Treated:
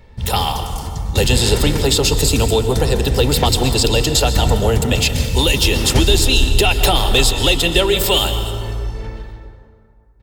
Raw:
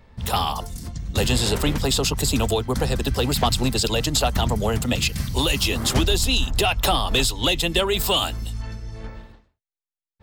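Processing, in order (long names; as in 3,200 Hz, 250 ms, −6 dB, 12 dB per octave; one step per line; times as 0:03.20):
parametric band 1,200 Hz −5 dB 0.88 octaves
comb filter 2.2 ms, depth 30%
dense smooth reverb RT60 2.3 s, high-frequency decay 0.5×, pre-delay 110 ms, DRR 7 dB
level +5.5 dB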